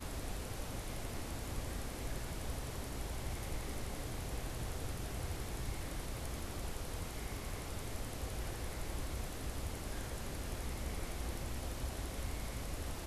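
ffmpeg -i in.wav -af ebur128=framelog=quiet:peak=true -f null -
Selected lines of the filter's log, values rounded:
Integrated loudness:
  I:         -43.1 LUFS
  Threshold: -53.1 LUFS
Loudness range:
  LRA:         0.6 LU
  Threshold: -63.1 LUFS
  LRA low:   -43.4 LUFS
  LRA high:  -42.8 LUFS
True peak:
  Peak:      -28.1 dBFS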